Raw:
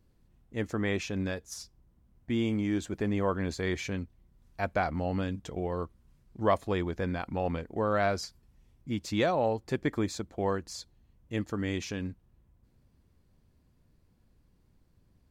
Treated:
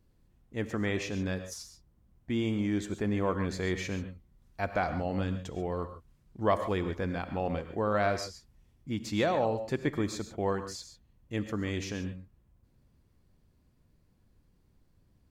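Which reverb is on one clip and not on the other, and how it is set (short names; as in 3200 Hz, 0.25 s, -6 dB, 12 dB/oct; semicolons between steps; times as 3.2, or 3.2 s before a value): non-linear reverb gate 0.16 s rising, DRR 9 dB; gain -1 dB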